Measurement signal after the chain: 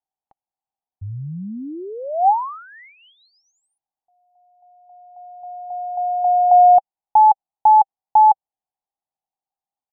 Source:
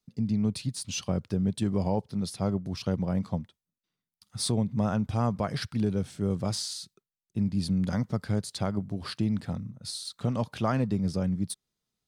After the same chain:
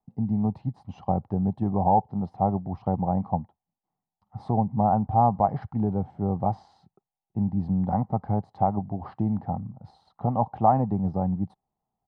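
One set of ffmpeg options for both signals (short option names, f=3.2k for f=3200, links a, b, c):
-af "lowpass=f=790:t=q:w=8.9,aecho=1:1:1:0.32"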